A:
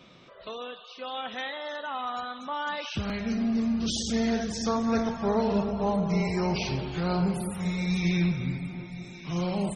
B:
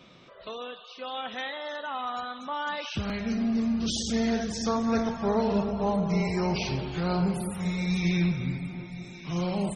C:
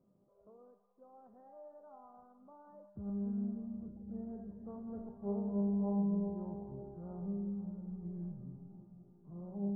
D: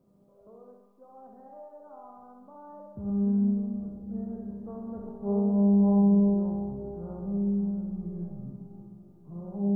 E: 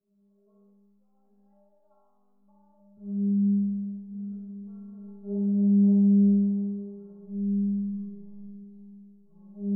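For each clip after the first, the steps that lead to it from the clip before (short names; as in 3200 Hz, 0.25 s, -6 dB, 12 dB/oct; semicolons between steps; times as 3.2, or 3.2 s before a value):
nothing audible
Gaussian blur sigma 11 samples; resonator 200 Hz, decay 1.1 s, mix 90%; gain +1 dB
flutter echo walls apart 11.1 m, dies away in 0.76 s; gain +6.5 dB
metallic resonator 200 Hz, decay 0.6 s, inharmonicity 0.008; gain +2 dB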